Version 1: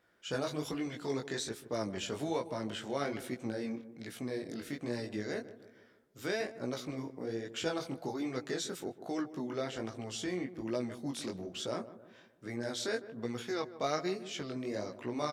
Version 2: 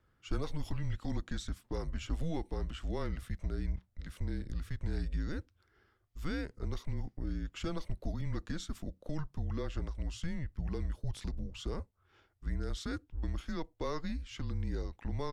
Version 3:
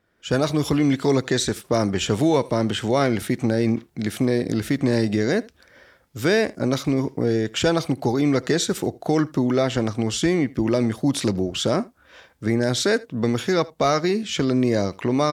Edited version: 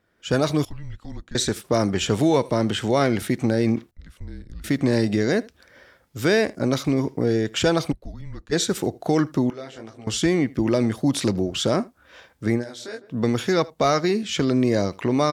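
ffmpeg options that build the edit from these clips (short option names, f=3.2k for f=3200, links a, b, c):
-filter_complex "[1:a]asplit=3[a][b][c];[0:a]asplit=2[d][e];[2:a]asplit=6[f][g][h][i][j][k];[f]atrim=end=0.652[l];[a]atrim=start=0.648:end=1.352[m];[g]atrim=start=1.348:end=3.912[n];[b]atrim=start=3.908:end=4.642[o];[h]atrim=start=4.638:end=7.93[p];[c]atrim=start=7.91:end=8.53[q];[i]atrim=start=8.51:end=9.502[r];[d]atrim=start=9.498:end=10.072[s];[j]atrim=start=10.068:end=12.65[t];[e]atrim=start=12.55:end=13.14[u];[k]atrim=start=13.04[v];[l][m]acrossfade=d=0.004:c1=hsin:c2=hsin[w];[w][n]acrossfade=d=0.004:c1=hsin:c2=hsin[x];[x][o]acrossfade=d=0.004:c1=hsin:c2=hsin[y];[y][p]acrossfade=d=0.004:c1=hsin:c2=hsin[z];[z][q]acrossfade=d=0.02:c1=tri:c2=tri[aa];[aa][r]acrossfade=d=0.02:c1=tri:c2=tri[ab];[ab][s]acrossfade=d=0.004:c1=hsin:c2=hsin[ac];[ac][t]acrossfade=d=0.004:c1=hsin:c2=hsin[ad];[ad][u]acrossfade=d=0.1:c1=tri:c2=tri[ae];[ae][v]acrossfade=d=0.1:c1=tri:c2=tri"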